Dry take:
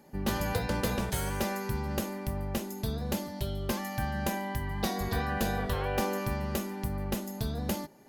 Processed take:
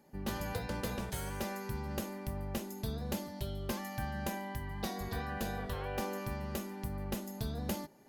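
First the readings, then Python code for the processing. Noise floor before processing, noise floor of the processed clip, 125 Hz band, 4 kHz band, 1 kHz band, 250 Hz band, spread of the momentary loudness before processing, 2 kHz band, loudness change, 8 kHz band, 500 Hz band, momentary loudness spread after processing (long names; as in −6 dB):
−41 dBFS, −46 dBFS, −6.0 dB, −6.5 dB, −6.5 dB, −6.0 dB, 5 LU, −6.5 dB, −6.5 dB, −6.5 dB, −6.5 dB, 3 LU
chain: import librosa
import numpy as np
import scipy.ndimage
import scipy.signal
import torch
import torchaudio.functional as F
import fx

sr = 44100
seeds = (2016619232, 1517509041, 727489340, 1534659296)

y = fx.rider(x, sr, range_db=10, speed_s=2.0)
y = y * 10.0 ** (-6.5 / 20.0)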